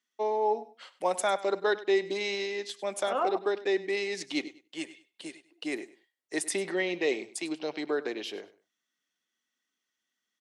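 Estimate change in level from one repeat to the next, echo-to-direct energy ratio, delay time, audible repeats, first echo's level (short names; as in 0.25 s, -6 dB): -12.5 dB, -17.0 dB, 99 ms, 2, -17.0 dB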